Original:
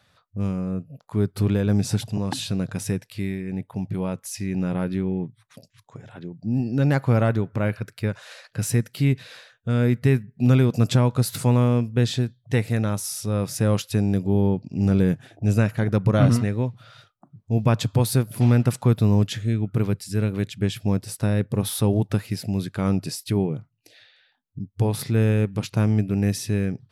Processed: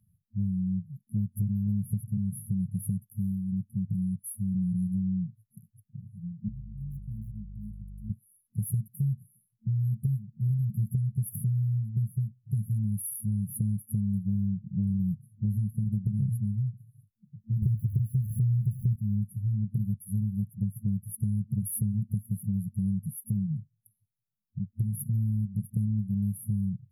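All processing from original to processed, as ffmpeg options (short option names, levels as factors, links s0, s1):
-filter_complex "[0:a]asettb=1/sr,asplit=3[s0][s1][s2];[s0]atrim=end=6.484[s3];[s1]atrim=start=6.48:end=8.1,asetpts=PTS-STARTPTS,afade=t=in:d=0.004:c=qsin,afade=t=out:st=1.616:d=0.004:c=qsin,acrossover=split=350 4400:gain=0.112 1 0.126[s4][s5][s6];[s4][s5][s6]amix=inputs=3:normalize=0,asoftclip=type=hard:threshold=0.141,aeval=exprs='val(0)+0.00891*(sin(2*PI*50*n/s)+sin(2*PI*2*50*n/s)/2+sin(2*PI*3*50*n/s)/3+sin(2*PI*4*50*n/s)/4+sin(2*PI*5*50*n/s)/5)':c=same[s7];[s2]atrim=start=8.096[s8];[s3][s7]acrossfade=d=0.004:c1=hsin:c2=qsin[s9];[s9][s8]acrossfade=d=0.004:c1=qsin:c2=hsin,asettb=1/sr,asplit=3[s10][s11][s12];[s10]atrim=end=17.624[s13];[s11]atrim=start=17.62:end=18.96,asetpts=PTS-STARTPTS,afade=t=in:d=0.004:c=qsin,afade=t=out:st=1.336:d=0.004:c=qsin,aeval=exprs='val(0)+0.5*0.0447*sgn(val(0))':c=same,deesser=0.55,equalizer=f=80:w=0.65:g=12[s14];[s12]atrim=start=18.956[s15];[s13][s14]acrossfade=d=0.004:c1=hsin:c2=qsin[s16];[s16][s15]acrossfade=d=0.004:c1=qsin:c2=hsin,afftfilt=real='re*(1-between(b*sr/4096,220,10000))':imag='im*(1-between(b*sr/4096,220,10000))':win_size=4096:overlap=0.75,acompressor=threshold=0.0562:ratio=6"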